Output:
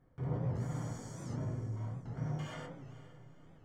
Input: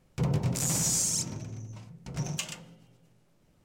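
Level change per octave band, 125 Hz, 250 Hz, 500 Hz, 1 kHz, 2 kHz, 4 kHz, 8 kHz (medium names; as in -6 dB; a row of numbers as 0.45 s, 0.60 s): -4.0 dB, -6.0 dB, -4.0 dB, -4.5 dB, -9.0 dB, -20.0 dB, -28.5 dB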